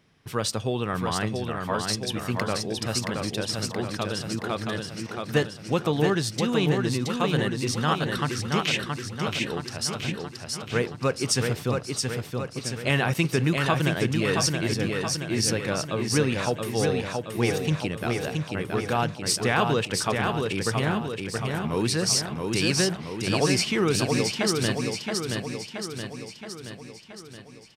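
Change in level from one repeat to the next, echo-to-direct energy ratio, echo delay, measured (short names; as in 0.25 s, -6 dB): -5.0 dB, -2.5 dB, 0.674 s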